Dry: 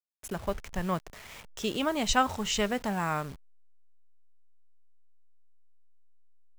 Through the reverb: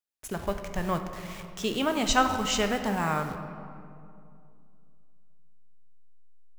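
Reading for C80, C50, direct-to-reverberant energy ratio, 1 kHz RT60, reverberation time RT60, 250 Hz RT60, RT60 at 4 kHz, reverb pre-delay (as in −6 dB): 9.0 dB, 7.5 dB, 6.5 dB, 2.3 s, 2.5 s, 2.9 s, 1.3 s, 10 ms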